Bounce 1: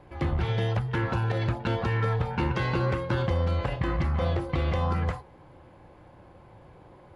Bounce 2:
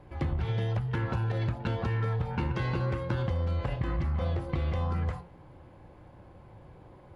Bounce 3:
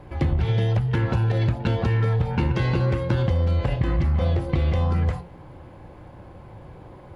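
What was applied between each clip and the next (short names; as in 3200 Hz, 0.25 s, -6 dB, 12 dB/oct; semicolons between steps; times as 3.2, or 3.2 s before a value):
low shelf 260 Hz +5.5 dB; de-hum 173.2 Hz, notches 27; compressor, threshold -23 dBFS, peak gain reduction 6 dB; gain -3 dB
dynamic EQ 1200 Hz, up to -5 dB, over -52 dBFS, Q 1.3; gain +8.5 dB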